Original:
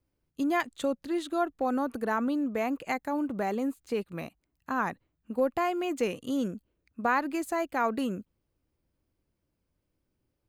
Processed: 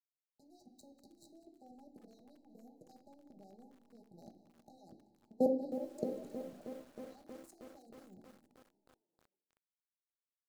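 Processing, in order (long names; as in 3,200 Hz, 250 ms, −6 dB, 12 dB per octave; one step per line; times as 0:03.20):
0:02.36–0:02.90: flat-topped bell 1,900 Hz −14.5 dB 2.8 octaves
pitch vibrato 0.54 Hz 43 cents
output level in coarse steps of 24 dB
dead-zone distortion −47 dBFS
reverb reduction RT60 0.57 s
linear-phase brick-wall band-stop 840–3,800 Hz
high-shelf EQ 3,100 Hz −10.5 dB
echo with shifted repeats 192 ms, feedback 64%, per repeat +31 Hz, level −17 dB
convolution reverb RT60 0.85 s, pre-delay 3 ms, DRR 3.5 dB
feedback echo at a low word length 316 ms, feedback 80%, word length 10 bits, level −11 dB
level +4 dB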